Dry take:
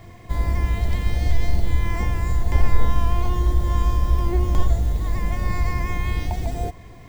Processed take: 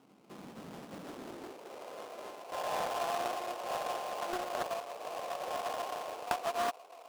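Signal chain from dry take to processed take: band-pass sweep 3500 Hz -> 770 Hz, 2.02–2.87; sample-rate reducer 1800 Hz, jitter 20%; high-pass sweep 190 Hz -> 530 Hz, 0.96–1.81; Doppler distortion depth 0.75 ms; gain -2 dB

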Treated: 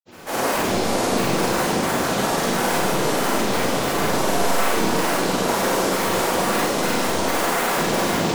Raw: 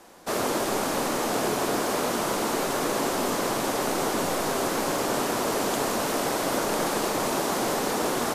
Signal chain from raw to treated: limiter -23.5 dBFS, peak gain reduction 10.5 dB; grains, pitch spread up and down by 12 st; Schroeder reverb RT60 1 s, combs from 33 ms, DRR -5 dB; gain +6.5 dB

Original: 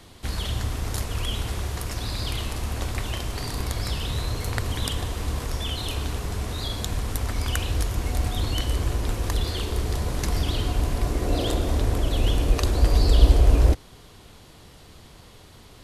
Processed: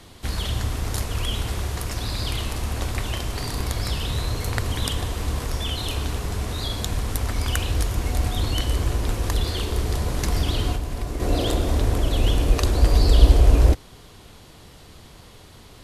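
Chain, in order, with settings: 10.73–11.2 compressor 4:1, threshold -26 dBFS, peak gain reduction 7.5 dB; gain +2 dB; WMA 128 kbps 48000 Hz

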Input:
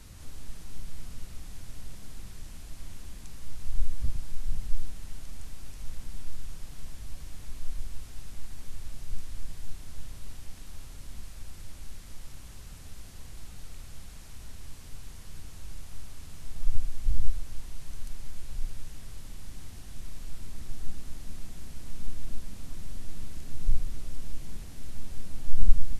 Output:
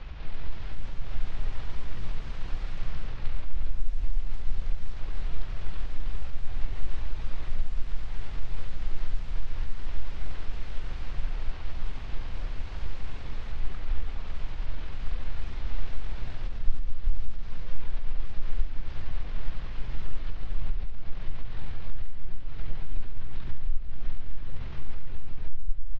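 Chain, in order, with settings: bin magnitudes rounded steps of 15 dB; notches 60/120/180/240/300/360/420 Hz; compressor 8:1, threshold -27 dBFS, peak gain reduction 21.5 dB; pitch shift -10.5 st; air absorption 380 m; echoes that change speed 0.363 s, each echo +4 st, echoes 3, each echo -6 dB; on a send: feedback echo 74 ms, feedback 58%, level -12.5 dB; on the sum: gain +11 dB

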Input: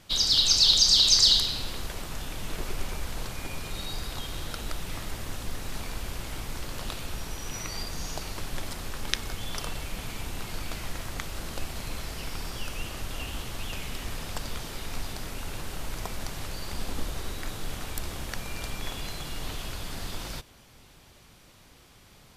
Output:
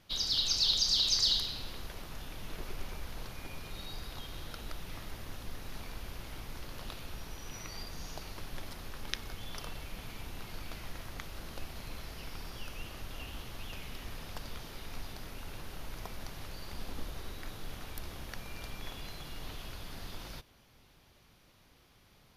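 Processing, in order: bell 7900 Hz -10.5 dB 0.38 oct; gain -8 dB

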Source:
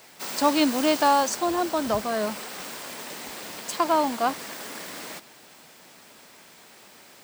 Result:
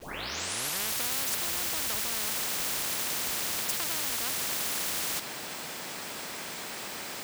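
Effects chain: tape start at the beginning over 1.23 s; requantised 10-bit, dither none; spectral compressor 10:1; gain -7 dB

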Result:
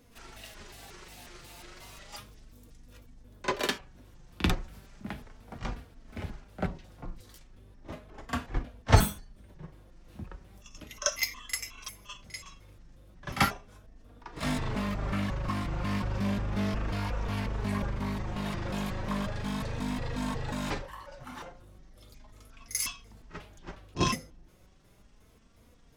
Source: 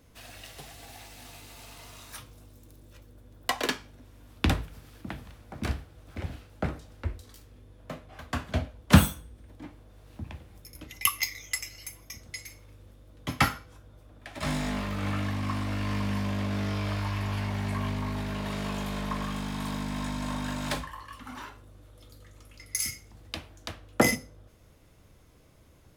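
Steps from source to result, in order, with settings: trilling pitch shifter -11.5 st, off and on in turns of 0.18 s; flange 0.35 Hz, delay 4.1 ms, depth 1.7 ms, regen +48%; pre-echo 40 ms -13.5 dB; gain +3 dB

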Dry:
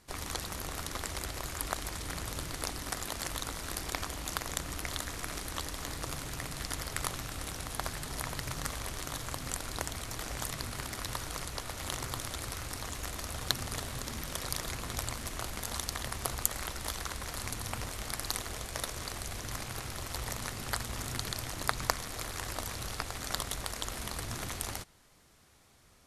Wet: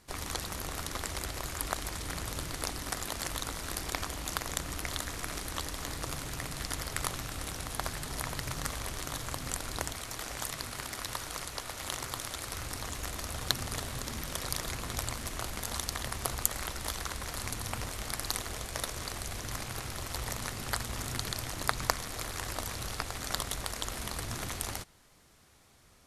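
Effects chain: 9.92–12.52 low shelf 300 Hz -6.5 dB; gain +1 dB

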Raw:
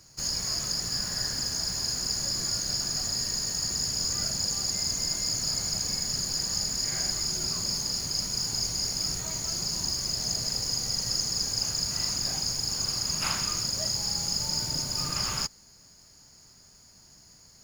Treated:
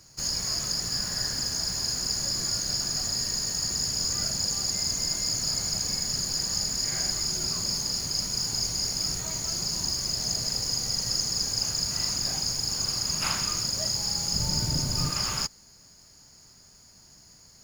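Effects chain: 14.33–15.09 low shelf 280 Hz +10 dB; gain +1 dB

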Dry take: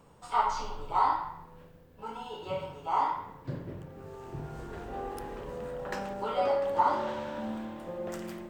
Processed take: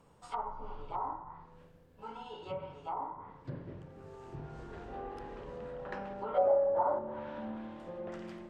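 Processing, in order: treble ducked by the level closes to 660 Hz, closed at -27 dBFS; 6.34–6.99 fifteen-band EQ 250 Hz -5 dB, 630 Hz +11 dB, 1600 Hz +8 dB, 4000 Hz +7 dB; gain -5 dB

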